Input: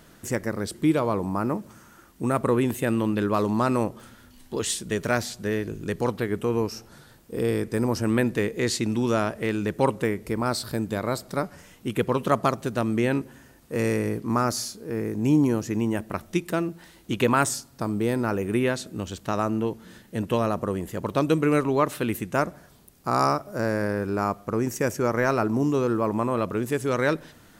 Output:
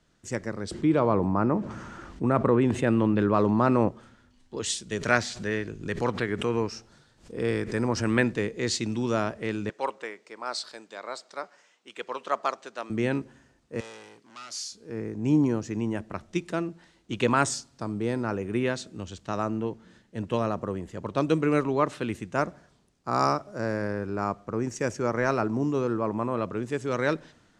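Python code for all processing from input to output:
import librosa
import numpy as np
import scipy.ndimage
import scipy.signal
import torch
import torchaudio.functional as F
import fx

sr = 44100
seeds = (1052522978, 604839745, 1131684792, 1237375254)

y = fx.chain(x, sr, fx.lowpass(hz=2500.0, slope=6),
    fx.env_flatten(amount_pct=50), at=(0.71, 3.89))
y = fx.chain(y, sr, fx.dynamic_eq(hz=1800.0, q=0.86, threshold_db=-43.0, ratio=4.0, max_db=6),
    fx.pre_swell(db_per_s=120.0), at=(4.98, 8.33))
y = fx.chain(y, sr, fx.highpass(hz=610.0, slope=12),
    fx.peak_eq(hz=11000.0, db=-10.0, octaves=0.47), at=(9.69, 12.9))
y = fx.chain(y, sr, fx.clip_hard(threshold_db=-28.0),
    fx.highpass(hz=1200.0, slope=6), at=(13.8, 14.72))
y = scipy.signal.sosfilt(scipy.signal.butter(4, 7700.0, 'lowpass', fs=sr, output='sos'), y)
y = fx.band_widen(y, sr, depth_pct=40)
y = y * 10.0 ** (-3.0 / 20.0)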